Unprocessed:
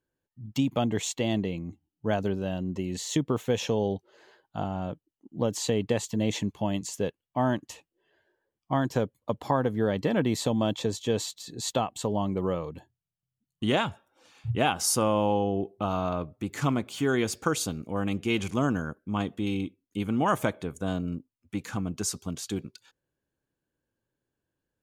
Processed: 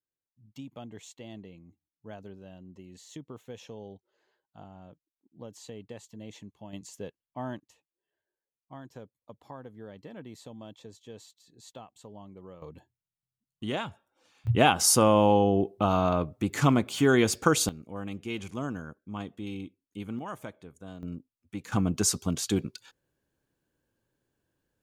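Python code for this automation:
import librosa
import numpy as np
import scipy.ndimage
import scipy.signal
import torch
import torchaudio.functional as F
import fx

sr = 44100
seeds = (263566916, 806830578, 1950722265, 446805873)

y = fx.gain(x, sr, db=fx.steps((0.0, -17.0), (6.73, -10.5), (7.6, -19.0), (12.62, -7.0), (14.47, 4.0), (17.69, -8.0), (20.19, -14.0), (21.03, -5.0), (21.72, 5.0)))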